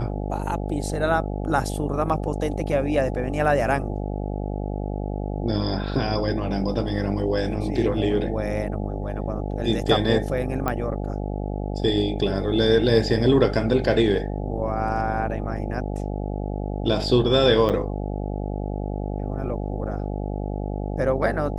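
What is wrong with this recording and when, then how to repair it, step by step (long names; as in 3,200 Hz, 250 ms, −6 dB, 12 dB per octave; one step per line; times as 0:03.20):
mains buzz 50 Hz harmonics 17 −28 dBFS
0:10.68: click −11 dBFS
0:17.69–0:17.70: drop-out 7.8 ms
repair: click removal
hum removal 50 Hz, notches 17
repair the gap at 0:17.69, 7.8 ms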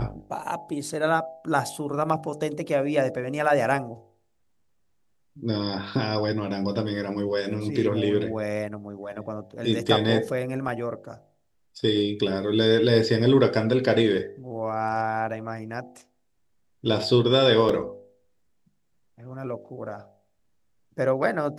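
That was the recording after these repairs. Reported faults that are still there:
none of them is left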